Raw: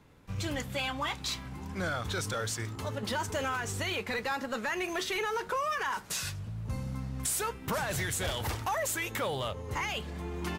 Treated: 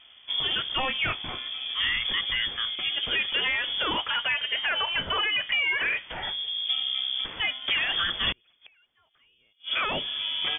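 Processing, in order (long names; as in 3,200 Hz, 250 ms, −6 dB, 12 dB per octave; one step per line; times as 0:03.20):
0:08.32–0:09.71: gate with flip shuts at −29 dBFS, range −38 dB
voice inversion scrambler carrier 3,400 Hz
level +6 dB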